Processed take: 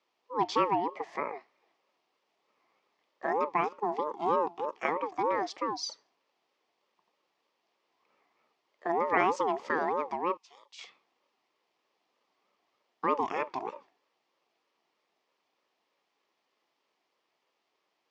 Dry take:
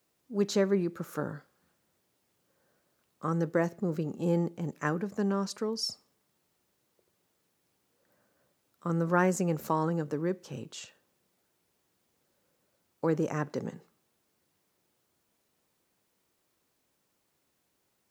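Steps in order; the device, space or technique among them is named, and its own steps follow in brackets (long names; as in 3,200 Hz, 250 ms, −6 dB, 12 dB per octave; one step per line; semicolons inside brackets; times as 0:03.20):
voice changer toy (ring modulator whose carrier an LFO sweeps 630 Hz, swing 20%, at 3.2 Hz; loudspeaker in its box 410–4,700 Hz, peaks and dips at 900 Hz −3 dB, 1,500 Hz −8 dB, 3,900 Hz −4 dB)
0:10.37–0:10.79: first-order pre-emphasis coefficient 0.97
level +6 dB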